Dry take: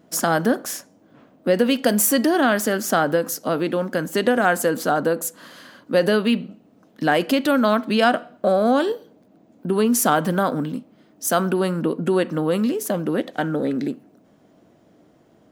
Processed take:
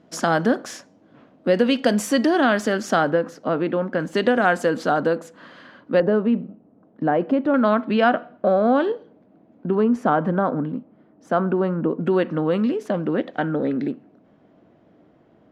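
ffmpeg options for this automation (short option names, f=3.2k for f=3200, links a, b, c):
-af "asetnsamples=n=441:p=0,asendcmd='3.1 lowpass f 2300;4 lowpass f 4500;5.18 lowpass f 2700;6 lowpass f 1000;7.54 lowpass f 2300;9.75 lowpass f 1400;12.01 lowpass f 2800',lowpass=5k"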